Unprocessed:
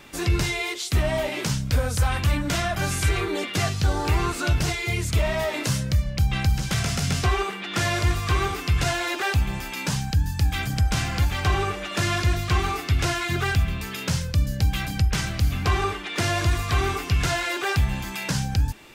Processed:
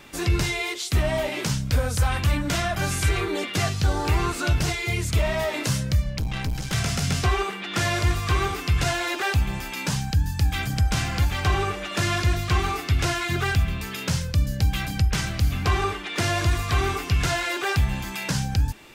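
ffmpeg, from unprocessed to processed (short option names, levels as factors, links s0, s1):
-filter_complex "[0:a]asettb=1/sr,asplit=3[s0][s1][s2];[s0]atrim=end=6.184[s3];[s1]atrim=start=6.18:end=6.73,asetpts=PTS-STARTPTS,afade=t=in:d=0.004:c=qsin,afade=t=out:st=0.546:d=0.004:c=qsin,aeval=exprs='(tanh(14.1*val(0)+0.5)-tanh(0.5))/14.1':c=same[s4];[s2]atrim=start=6.726[s5];[s3][s4]acrossfade=d=0.004:c1=hsin:c2=qsin[s6];[s6][s5]acrossfade=d=0.004:c1=qsin:c2=hsin"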